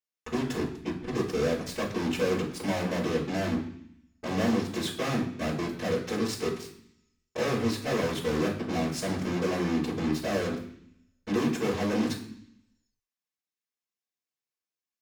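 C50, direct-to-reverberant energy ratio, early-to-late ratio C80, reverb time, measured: 8.0 dB, -9.0 dB, 11.0 dB, 0.65 s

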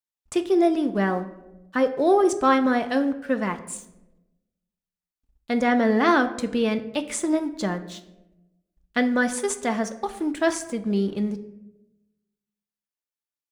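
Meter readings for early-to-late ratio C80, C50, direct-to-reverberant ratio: 15.5 dB, 13.5 dB, 6.5 dB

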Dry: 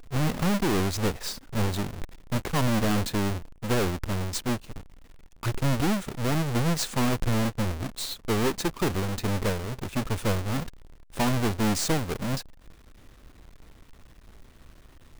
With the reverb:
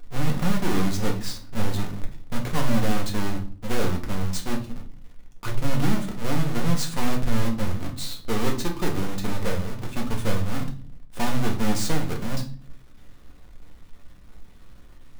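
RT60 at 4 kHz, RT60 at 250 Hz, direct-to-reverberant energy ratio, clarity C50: 0.35 s, 0.70 s, 1.0 dB, 11.0 dB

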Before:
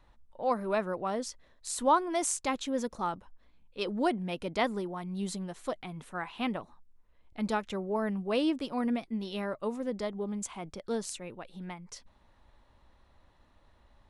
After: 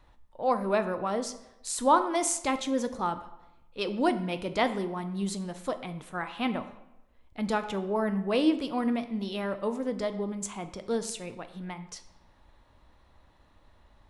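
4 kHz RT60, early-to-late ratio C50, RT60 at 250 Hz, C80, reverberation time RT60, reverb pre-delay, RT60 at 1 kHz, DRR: 0.65 s, 12.5 dB, 0.90 s, 14.5 dB, 0.95 s, 3 ms, 0.90 s, 9.0 dB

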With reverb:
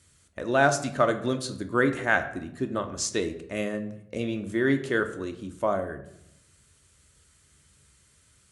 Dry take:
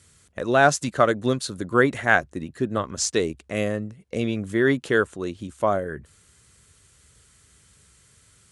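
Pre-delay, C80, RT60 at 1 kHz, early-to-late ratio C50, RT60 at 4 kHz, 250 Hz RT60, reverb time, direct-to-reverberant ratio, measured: 3 ms, 15.0 dB, 0.65 s, 11.5 dB, 0.50 s, 1.1 s, 0.75 s, 6.5 dB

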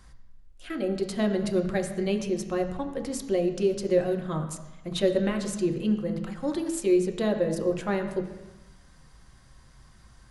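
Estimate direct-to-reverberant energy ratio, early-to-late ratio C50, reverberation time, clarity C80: 3.0 dB, 8.5 dB, 1.1 s, 10.0 dB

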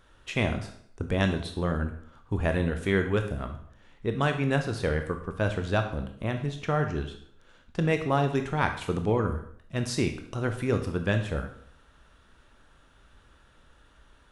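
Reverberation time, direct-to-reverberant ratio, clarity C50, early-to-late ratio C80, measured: 0.60 s, 6.0 dB, 9.0 dB, 12.5 dB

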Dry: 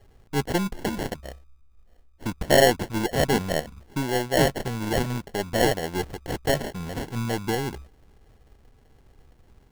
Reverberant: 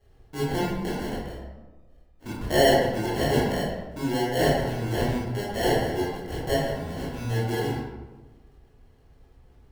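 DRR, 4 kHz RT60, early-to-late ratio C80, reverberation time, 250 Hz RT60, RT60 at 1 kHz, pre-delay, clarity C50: -8.5 dB, 0.65 s, 2.0 dB, 1.2 s, 1.4 s, 1.1 s, 15 ms, -1.0 dB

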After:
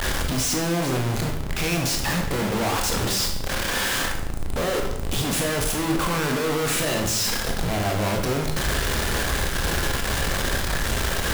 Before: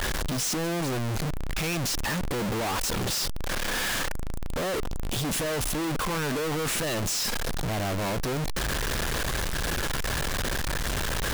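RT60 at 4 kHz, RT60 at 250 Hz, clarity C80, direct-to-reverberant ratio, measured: 0.65 s, 0.90 s, 8.5 dB, 1.5 dB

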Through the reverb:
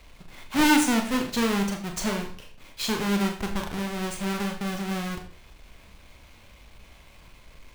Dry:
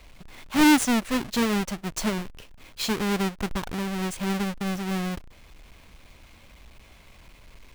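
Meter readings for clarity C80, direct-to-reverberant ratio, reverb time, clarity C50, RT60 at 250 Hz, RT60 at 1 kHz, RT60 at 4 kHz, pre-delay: 11.5 dB, 3.0 dB, 0.45 s, 9.0 dB, 0.45 s, 0.45 s, 0.45 s, 30 ms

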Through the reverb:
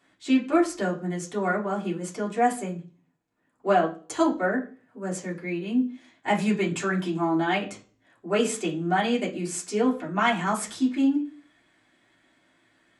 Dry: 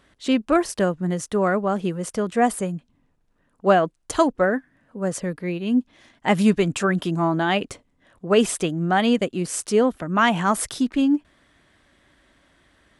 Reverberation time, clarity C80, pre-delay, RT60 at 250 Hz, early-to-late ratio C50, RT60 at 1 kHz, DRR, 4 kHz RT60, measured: 0.40 s, 17.5 dB, 3 ms, 0.45 s, 12.5 dB, 0.35 s, -6.0 dB, 0.40 s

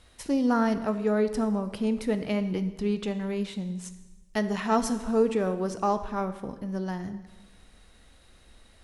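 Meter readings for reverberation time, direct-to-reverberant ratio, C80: 1.2 s, 10.0 dB, 13.5 dB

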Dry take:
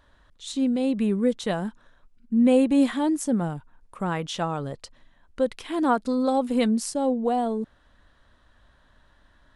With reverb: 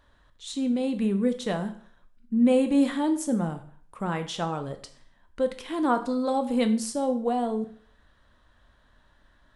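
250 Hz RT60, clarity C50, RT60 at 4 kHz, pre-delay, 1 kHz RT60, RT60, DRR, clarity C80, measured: 0.50 s, 12.5 dB, 0.45 s, 7 ms, 0.50 s, 0.50 s, 8.0 dB, 16.0 dB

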